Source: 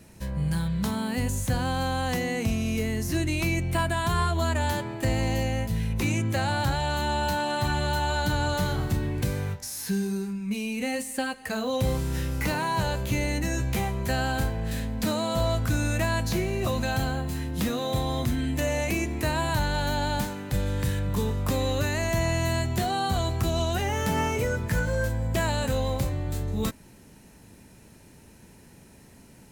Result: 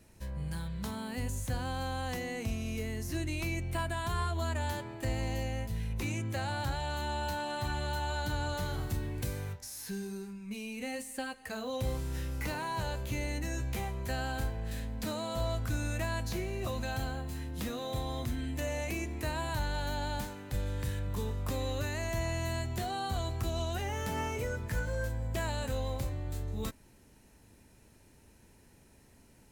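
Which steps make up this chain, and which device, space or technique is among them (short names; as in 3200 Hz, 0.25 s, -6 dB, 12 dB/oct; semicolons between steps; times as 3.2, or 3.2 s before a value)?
8.73–9.53 high shelf 6100 Hz +6 dB; low shelf boost with a cut just above (low shelf 61 Hz +6 dB; bell 170 Hz -5.5 dB 0.73 oct); gain -8.5 dB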